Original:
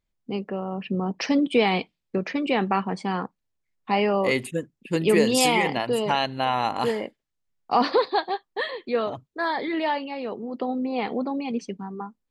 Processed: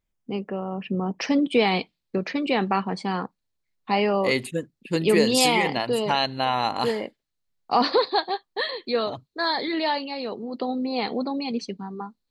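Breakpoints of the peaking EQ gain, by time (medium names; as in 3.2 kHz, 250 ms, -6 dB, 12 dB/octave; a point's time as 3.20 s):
peaking EQ 4.2 kHz 0.36 oct
1.14 s -5 dB
1.75 s +7 dB
8.47 s +7 dB
8.97 s +15 dB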